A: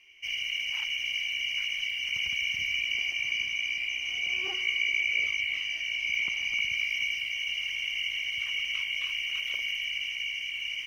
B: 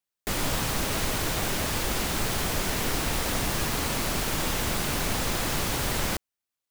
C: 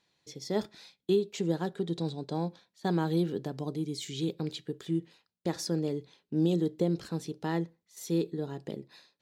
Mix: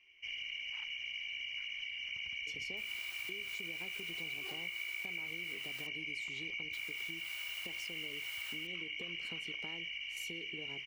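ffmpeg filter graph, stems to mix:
-filter_complex "[0:a]lowpass=4k,volume=-7dB[a];[1:a]highpass=1.4k,aexciter=amount=1.2:drive=3.4:freq=12k,adelay=2500,volume=-12.5dB,asplit=3[b][c][d];[b]atrim=end=5.87,asetpts=PTS-STARTPTS,afade=t=out:st=5.866:d=0.004:c=hsin[e];[c]atrim=start=5.87:end=6.73,asetpts=PTS-STARTPTS,volume=0[f];[d]atrim=start=6.73,asetpts=PTS-STARTPTS,afade=t=in:d=0.004:c=hsin[g];[e][f][g]concat=n=3:v=0:a=1[h];[2:a]acompressor=threshold=-29dB:ratio=6,lowshelf=f=160:g=-10.5,adelay=2200,volume=-1dB[i];[h][i]amix=inputs=2:normalize=0,acompressor=threshold=-46dB:ratio=6,volume=0dB[j];[a][j]amix=inputs=2:normalize=0,acompressor=threshold=-39dB:ratio=4"

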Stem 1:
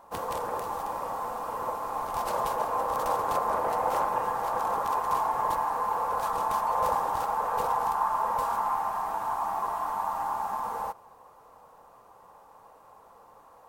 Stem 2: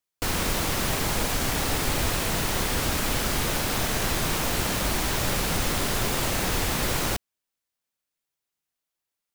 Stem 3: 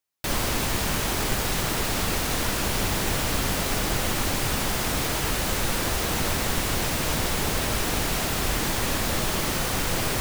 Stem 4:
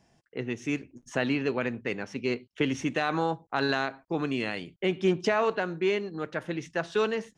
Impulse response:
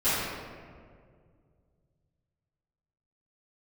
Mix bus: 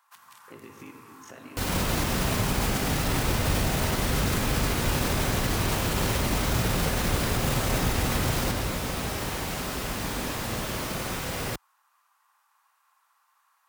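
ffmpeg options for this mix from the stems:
-filter_complex "[0:a]highpass=f=1.4k:w=0.5412,highpass=f=1.4k:w=1.3066,acompressor=threshold=-45dB:ratio=2.5,volume=-3dB[a];[1:a]lowshelf=f=180:g=9,adelay=1350,volume=1.5dB,asplit=2[b][c];[c]volume=-23dB[d];[2:a]adelay=1350,volume=-10.5dB,asplit=2[e][f];[f]volume=-11dB[g];[3:a]acompressor=threshold=-37dB:ratio=6,aeval=exprs='val(0)*sin(2*PI*25*n/s)':c=same,adelay=150,volume=-2dB,asplit=2[h][i];[i]volume=-18.5dB[j];[a][h]amix=inputs=2:normalize=0,alimiter=level_in=8.5dB:limit=-24dB:level=0:latency=1:release=381,volume=-8.5dB,volume=0dB[k];[b][e]amix=inputs=2:normalize=0,alimiter=limit=-19.5dB:level=0:latency=1,volume=0dB[l];[4:a]atrim=start_sample=2205[m];[d][g][j]amix=inputs=3:normalize=0[n];[n][m]afir=irnorm=-1:irlink=0[o];[k][l][o]amix=inputs=3:normalize=0,highpass=46"

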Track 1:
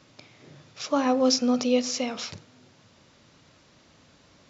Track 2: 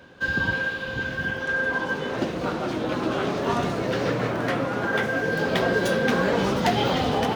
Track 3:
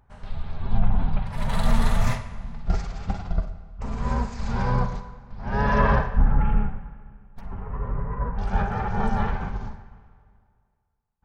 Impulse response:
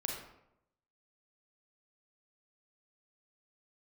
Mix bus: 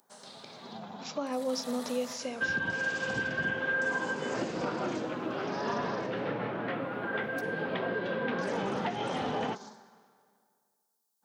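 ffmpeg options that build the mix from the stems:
-filter_complex "[0:a]adelay=250,volume=-1dB[a];[1:a]lowpass=f=3.4k:w=0.5412,lowpass=f=3.4k:w=1.3066,adelay=2200,volume=-1dB,afade=t=out:st=4.8:d=0.28:silence=0.398107[b];[2:a]highpass=f=210:w=0.5412,highpass=f=210:w=1.3066,aexciter=amount=6.1:drive=7.3:freq=3.7k,acrossover=split=3200[c][d];[d]acompressor=threshold=-33dB:ratio=4:attack=1:release=60[e];[c][e]amix=inputs=2:normalize=0,volume=-4.5dB[f];[a][f]amix=inputs=2:normalize=0,equalizer=f=500:w=1.5:g=4.5,acompressor=threshold=-49dB:ratio=1.5,volume=0dB[g];[b][g]amix=inputs=2:normalize=0,highpass=140,alimiter=limit=-22dB:level=0:latency=1:release=393"

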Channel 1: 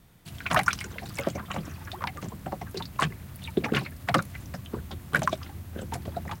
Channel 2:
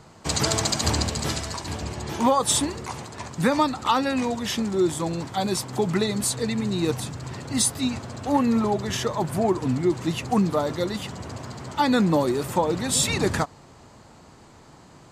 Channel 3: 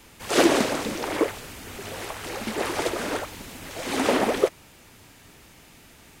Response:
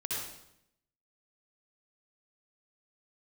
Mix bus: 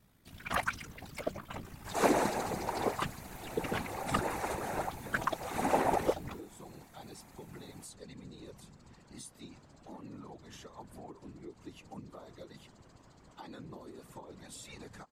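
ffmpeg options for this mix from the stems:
-filter_complex "[0:a]aeval=exprs='val(0)*sin(2*PI*28*n/s)':c=same,volume=0dB[a];[1:a]acompressor=threshold=-22dB:ratio=6,adelay=1600,volume=-16.5dB[b];[2:a]equalizer=f=800:t=o:w=0.33:g=12,equalizer=f=3.15k:t=o:w=0.33:g=-12,equalizer=f=5k:t=o:w=0.33:g=-8,equalizer=f=12.5k:t=o:w=0.33:g=3,adelay=1650,volume=-4dB[c];[a][b][c]amix=inputs=3:normalize=0,afftfilt=real='hypot(re,im)*cos(2*PI*random(0))':imag='hypot(re,im)*sin(2*PI*random(1))':win_size=512:overlap=0.75"

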